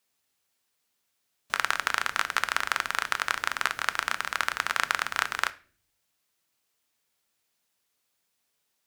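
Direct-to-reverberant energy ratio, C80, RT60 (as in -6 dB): 12.0 dB, 24.5 dB, 0.45 s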